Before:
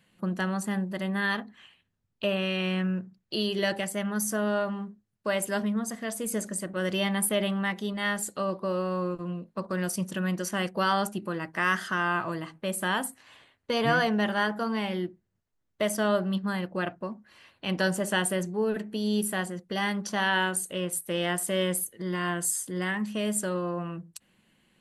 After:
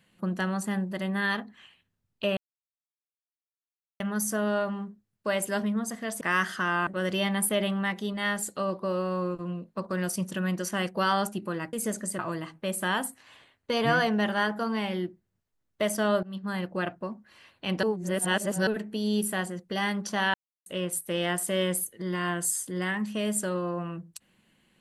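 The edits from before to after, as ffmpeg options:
-filter_complex "[0:a]asplit=12[s0][s1][s2][s3][s4][s5][s6][s7][s8][s9][s10][s11];[s0]atrim=end=2.37,asetpts=PTS-STARTPTS,afade=t=out:st=2.366:d=0.004:c=hsin[s12];[s1]atrim=start=2.37:end=4,asetpts=PTS-STARTPTS,volume=0[s13];[s2]atrim=start=4:end=6.212,asetpts=PTS-STARTPTS,afade=t=in:d=0.004:c=hsin[s14];[s3]atrim=start=11.528:end=12.192[s15];[s4]atrim=start=6.668:end=11.532[s16];[s5]atrim=start=6.208:end=6.672[s17];[s6]atrim=start=12.188:end=16.23,asetpts=PTS-STARTPTS,afade=t=out:st=4.038:d=0.004:c=hsin:silence=0.105925[s18];[s7]atrim=start=16.23:end=17.832,asetpts=PTS-STARTPTS,afade=t=in:d=0.37:silence=0.105925[s19];[s8]atrim=start=17.828:end=18.672,asetpts=PTS-STARTPTS,areverse[s20];[s9]atrim=start=18.668:end=20.34,asetpts=PTS-STARTPTS,afade=t=out:st=1.668:d=0.004:c=hsin[s21];[s10]atrim=start=20.34:end=20.66,asetpts=PTS-STARTPTS,volume=0[s22];[s11]atrim=start=20.66,asetpts=PTS-STARTPTS,afade=t=in:d=0.004:c=hsin[s23];[s12][s13][s14]concat=n=3:v=0:a=1[s24];[s24][s15]acrossfade=d=0.004:c1=hsin:c2=hsin[s25];[s25][s16]acrossfade=d=0.004:c1=hsin:c2=hsin[s26];[s26][s17]acrossfade=d=0.004:c1=hsin:c2=hsin[s27];[s18][s19]concat=n=2:v=0:a=1[s28];[s27][s28]acrossfade=d=0.004:c1=hsin:c2=hsin[s29];[s29][s20]acrossfade=d=0.004:c1=hsin:c2=hsin[s30];[s21][s22][s23]concat=n=3:v=0:a=1[s31];[s30][s31]acrossfade=d=0.004:c1=hsin:c2=hsin"

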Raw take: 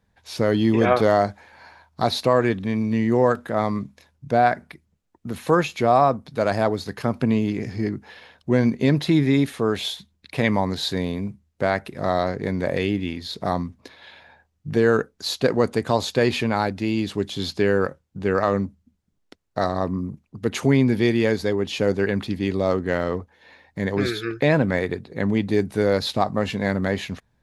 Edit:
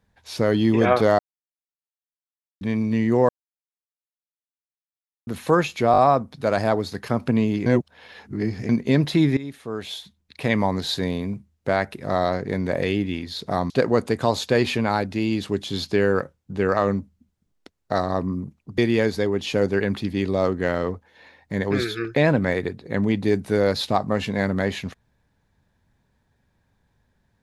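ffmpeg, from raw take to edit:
-filter_complex "[0:a]asplit=13[s0][s1][s2][s3][s4][s5][s6][s7][s8][s9][s10][s11][s12];[s0]atrim=end=1.19,asetpts=PTS-STARTPTS,afade=t=out:st=1.186:d=0.004:c=hsin[s13];[s1]atrim=start=1.19:end=2.61,asetpts=PTS-STARTPTS,volume=0[s14];[s2]atrim=start=2.61:end=3.29,asetpts=PTS-STARTPTS,afade=t=in:d=0.004:c=hsin,afade=t=out:st=0.676:d=0.004:c=hsin[s15];[s3]atrim=start=3.29:end=5.27,asetpts=PTS-STARTPTS,volume=0[s16];[s4]atrim=start=5.27:end=5.942,asetpts=PTS-STARTPTS,afade=t=in:d=0.004:c=hsin[s17];[s5]atrim=start=5.918:end=5.942[s18];[s6]atrim=start=5.918:end=5.942[s19];[s7]atrim=start=5.918:end=7.602[s20];[s8]atrim=start=7.598:end=8.632,asetpts=PTS-STARTPTS,areverse[s21];[s9]atrim=start=8.628:end=9.31,asetpts=PTS-STARTPTS,afade=t=out:st=0.678:d=0.004:c=hsin:silence=0.133352[s22];[s10]atrim=start=9.31:end=13.642,asetpts=PTS-STARTPTS,afade=t=in:d=1.28:silence=0.133352[s23];[s11]atrim=start=15.358:end=20.442[s24];[s12]atrim=start=21.038[s25];[s13][s14][s15][s16][s17]concat=n=5:v=0:a=1[s26];[s26][s18]acrossfade=d=0.004:c1=hsin:c2=hsin[s27];[s27][s19]acrossfade=d=0.004:c1=hsin:c2=hsin[s28];[s28][s20]acrossfade=d=0.004:c1=hsin:c2=hsin[s29];[s29][s21]acrossfade=d=0.004:c1=hsin:c2=hsin[s30];[s22][s23]concat=n=2:v=0:a=1[s31];[s30][s31]acrossfade=d=0.004:c1=hsin:c2=hsin[s32];[s32][s24]acrossfade=d=0.004:c1=hsin:c2=hsin[s33];[s33][s25]acrossfade=d=0.004:c1=hsin:c2=hsin"

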